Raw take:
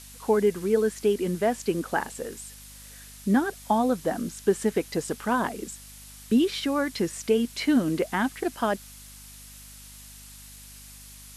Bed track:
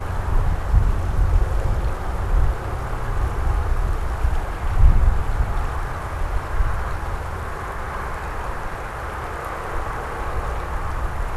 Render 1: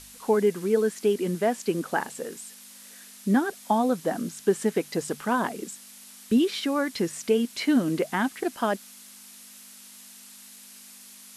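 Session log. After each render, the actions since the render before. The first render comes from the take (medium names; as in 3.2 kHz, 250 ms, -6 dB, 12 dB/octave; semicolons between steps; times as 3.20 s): de-hum 50 Hz, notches 3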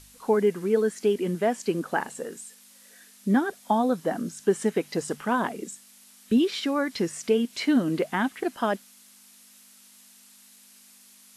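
noise print and reduce 6 dB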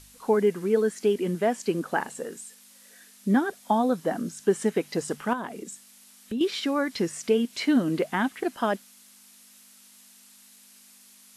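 5.33–6.41 s: compression 2:1, threshold -35 dBFS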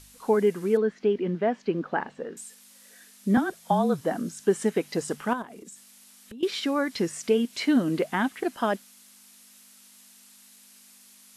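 0.77–2.37 s: distance through air 260 m; 3.37–4.01 s: frequency shift -32 Hz; 5.42–6.43 s: compression 5:1, threshold -41 dBFS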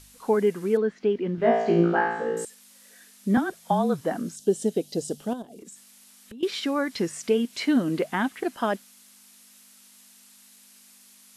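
1.36–2.45 s: flutter echo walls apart 3 m, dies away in 0.87 s; 4.36–5.59 s: high-order bell 1.5 kHz -16 dB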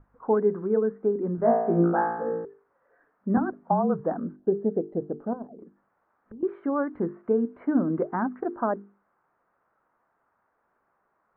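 steep low-pass 1.4 kHz 36 dB/octave; hum notches 50/100/150/200/250/300/350/400/450 Hz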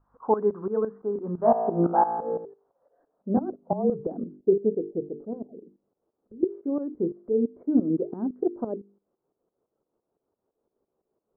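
tremolo saw up 5.9 Hz, depth 80%; low-pass sweep 1.1 kHz -> 420 Hz, 1.23–4.31 s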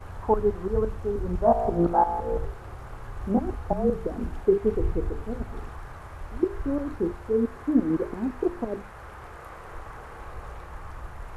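add bed track -14 dB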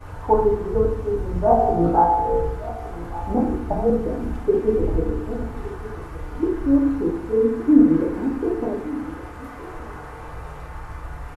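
delay 1170 ms -16.5 dB; FDN reverb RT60 0.66 s, low-frequency decay 1.35×, high-frequency decay 0.85×, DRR -2 dB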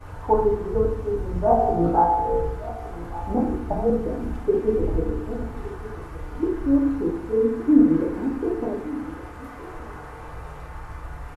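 trim -2 dB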